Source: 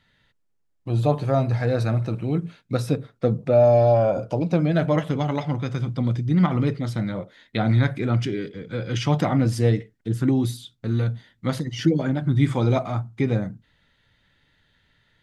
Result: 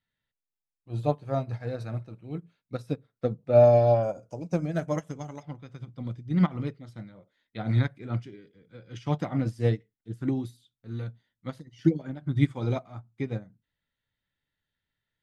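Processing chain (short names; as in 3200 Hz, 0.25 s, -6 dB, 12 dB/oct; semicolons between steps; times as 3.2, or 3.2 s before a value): 4.03–5.43 resonant high shelf 4900 Hz +8 dB, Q 3; upward expander 2.5:1, over -28 dBFS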